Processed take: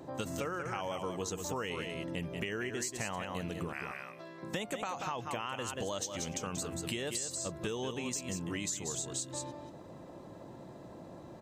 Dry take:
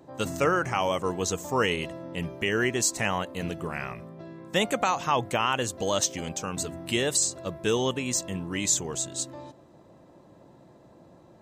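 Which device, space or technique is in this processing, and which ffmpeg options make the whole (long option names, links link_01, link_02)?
serial compression, peaks first: -filter_complex "[0:a]asettb=1/sr,asplit=3[link_01][link_02][link_03];[link_01]atrim=end=3.734[link_04];[link_02]atrim=start=3.73:end=4.43,asetpts=PTS-STARTPTS,afade=type=in:duration=0.004:curve=qsin,afade=type=out:start_time=0.696:duration=0.004:curve=qsin,highpass=frequency=1300:poles=1[link_05];[link_03]atrim=start=4.426[link_06];[link_04][link_05]acrossfade=duration=0.004:curve1=hsin:curve2=qsin[link_07];[link_07][link_06]acrossfade=duration=0.004:curve1=qsin:curve2=hsin,aecho=1:1:184:0.376,acompressor=threshold=-33dB:ratio=6,acompressor=threshold=-47dB:ratio=1.5,volume=4dB"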